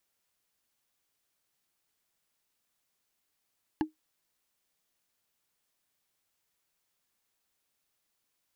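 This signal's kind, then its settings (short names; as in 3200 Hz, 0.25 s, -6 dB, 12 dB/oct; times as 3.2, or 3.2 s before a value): wood hit, lowest mode 311 Hz, decay 0.14 s, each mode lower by 5 dB, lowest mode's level -21 dB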